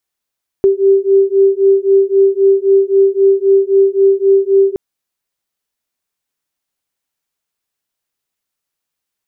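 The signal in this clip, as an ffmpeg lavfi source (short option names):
-f lavfi -i "aevalsrc='0.299*(sin(2*PI*389*t)+sin(2*PI*392.8*t))':d=4.12:s=44100"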